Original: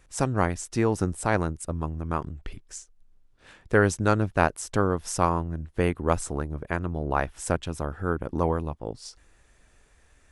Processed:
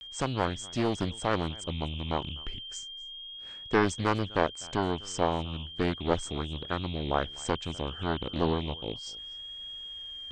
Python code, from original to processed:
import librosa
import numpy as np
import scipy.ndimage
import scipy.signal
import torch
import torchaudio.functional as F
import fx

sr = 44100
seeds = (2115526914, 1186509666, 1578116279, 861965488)

p1 = x + 10.0 ** (-37.0 / 20.0) * np.sin(2.0 * np.pi * 3200.0 * np.arange(len(x)) / sr)
p2 = scipy.signal.sosfilt(scipy.signal.cheby1(8, 1.0, 8400.0, 'lowpass', fs=sr, output='sos'), p1)
p3 = fx.rider(p2, sr, range_db=5, speed_s=2.0)
p4 = p2 + (p3 * librosa.db_to_amplitude(-2.0))
p5 = fx.vibrato(p4, sr, rate_hz=0.34, depth_cents=37.0)
p6 = p5 + fx.echo_single(p5, sr, ms=250, db=-23.5, dry=0)
p7 = fx.doppler_dist(p6, sr, depth_ms=0.72)
y = p7 * librosa.db_to_amplitude(-8.5)